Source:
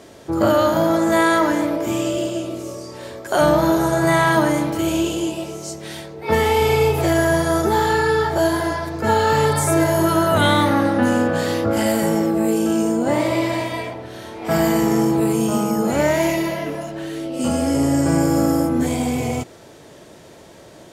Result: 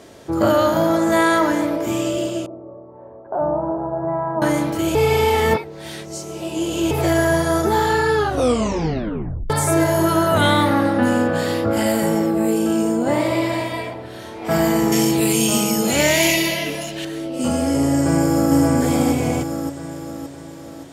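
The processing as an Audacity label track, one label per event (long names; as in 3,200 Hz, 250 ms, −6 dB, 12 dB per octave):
2.460000	4.420000	transistor ladder low-pass 1,000 Hz, resonance 45%
4.950000	6.910000	reverse
8.150000	8.150000	tape stop 1.35 s
10.500000	14.200000	notch filter 6,100 Hz, Q 7.5
14.920000	17.050000	high shelf with overshoot 1,900 Hz +10.5 dB, Q 1.5
17.940000	18.550000	delay throw 570 ms, feedback 50%, level −2 dB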